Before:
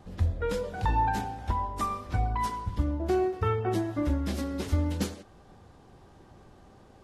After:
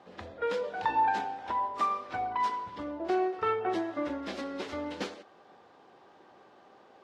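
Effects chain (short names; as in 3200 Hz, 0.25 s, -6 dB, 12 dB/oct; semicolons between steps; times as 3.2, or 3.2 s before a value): tracing distortion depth 0.062 ms; BPF 420–4000 Hz; pre-echo 39 ms -19 dB; gain +2 dB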